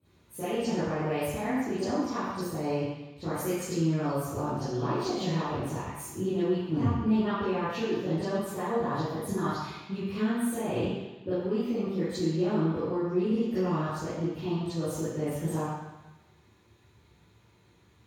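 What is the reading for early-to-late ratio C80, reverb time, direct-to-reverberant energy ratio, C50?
-0.5 dB, 1.0 s, -16.5 dB, -5.5 dB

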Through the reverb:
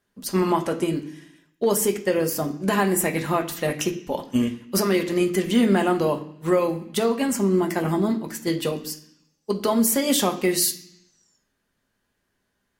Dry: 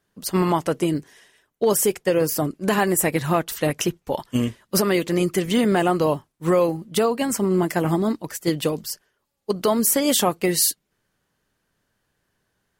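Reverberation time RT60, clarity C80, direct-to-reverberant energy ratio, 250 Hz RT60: 0.65 s, 15.0 dB, 3.5 dB, 0.95 s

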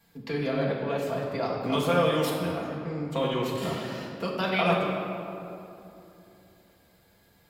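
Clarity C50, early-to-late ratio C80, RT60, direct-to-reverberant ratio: 1.0 dB, 2.5 dB, 2.9 s, -4.5 dB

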